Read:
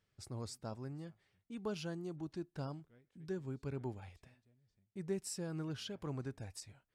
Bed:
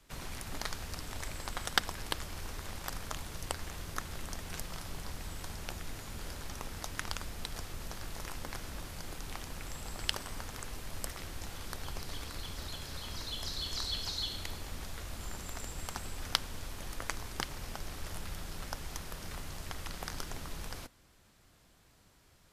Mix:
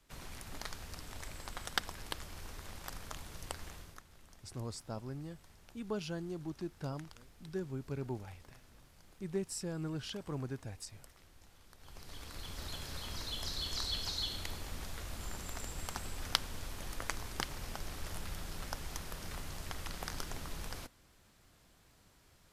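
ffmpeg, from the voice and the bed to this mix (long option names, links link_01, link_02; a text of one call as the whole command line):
ffmpeg -i stem1.wav -i stem2.wav -filter_complex "[0:a]adelay=4250,volume=2dB[link_01];[1:a]volume=12dB,afade=type=out:start_time=3.68:duration=0.34:silence=0.223872,afade=type=in:start_time=11.77:duration=0.97:silence=0.133352[link_02];[link_01][link_02]amix=inputs=2:normalize=0" out.wav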